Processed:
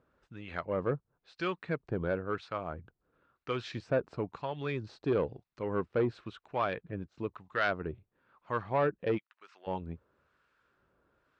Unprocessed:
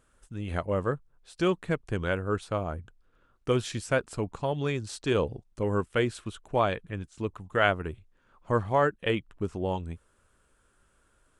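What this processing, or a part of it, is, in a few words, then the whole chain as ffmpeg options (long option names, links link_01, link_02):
guitar amplifier with harmonic tremolo: -filter_complex "[0:a]acrossover=split=1000[link_01][link_02];[link_01]aeval=exprs='val(0)*(1-0.7/2+0.7/2*cos(2*PI*1*n/s))':channel_layout=same[link_03];[link_02]aeval=exprs='val(0)*(1-0.7/2-0.7/2*cos(2*PI*1*n/s))':channel_layout=same[link_04];[link_03][link_04]amix=inputs=2:normalize=0,asoftclip=type=tanh:threshold=-21.5dB,highpass=94,equalizer=frequency=96:width_type=q:width=4:gain=-5,equalizer=frequency=220:width_type=q:width=4:gain=-3,equalizer=frequency=3200:width_type=q:width=4:gain=-6,lowpass=frequency=4300:width=0.5412,lowpass=frequency=4300:width=1.3066,asplit=3[link_05][link_06][link_07];[link_05]afade=type=out:start_time=9.17:duration=0.02[link_08];[link_06]highpass=1300,afade=type=in:start_time=9.17:duration=0.02,afade=type=out:start_time=9.66:duration=0.02[link_09];[link_07]afade=type=in:start_time=9.66:duration=0.02[link_10];[link_08][link_09][link_10]amix=inputs=3:normalize=0,volume=1dB"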